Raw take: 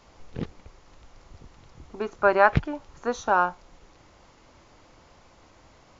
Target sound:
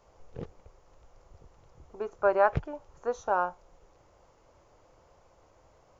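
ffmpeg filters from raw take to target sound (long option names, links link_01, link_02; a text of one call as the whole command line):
ffmpeg -i in.wav -af "equalizer=frequency=250:width_type=o:width=1:gain=-8,equalizer=frequency=500:width_type=o:width=1:gain=6,equalizer=frequency=2000:width_type=o:width=1:gain=-5,equalizer=frequency=4000:width_type=o:width=1:gain=-8,volume=-6dB" out.wav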